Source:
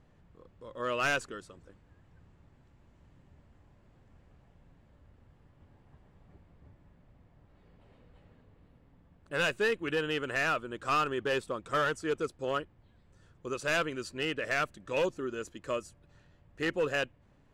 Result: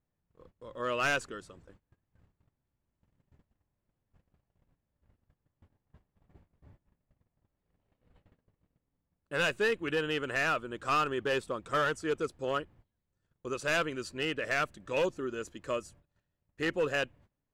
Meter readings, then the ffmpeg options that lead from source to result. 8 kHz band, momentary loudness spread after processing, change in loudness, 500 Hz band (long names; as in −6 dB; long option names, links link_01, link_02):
0.0 dB, 9 LU, 0.0 dB, 0.0 dB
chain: -af "agate=range=-22dB:threshold=-56dB:ratio=16:detection=peak"